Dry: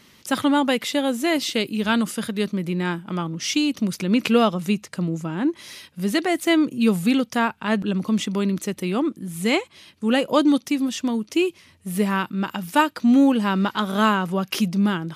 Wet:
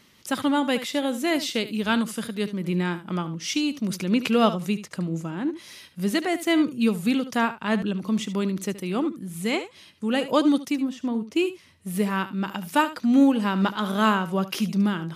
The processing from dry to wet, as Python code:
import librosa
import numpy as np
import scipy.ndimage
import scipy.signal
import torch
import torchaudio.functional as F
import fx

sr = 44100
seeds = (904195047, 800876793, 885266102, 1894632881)

y = fx.high_shelf(x, sr, hz=2400.0, db=-11.5, at=(10.76, 11.36))
y = y + 10.0 ** (-13.5 / 20.0) * np.pad(y, (int(73 * sr / 1000.0), 0))[:len(y)]
y = fx.am_noise(y, sr, seeds[0], hz=5.7, depth_pct=55)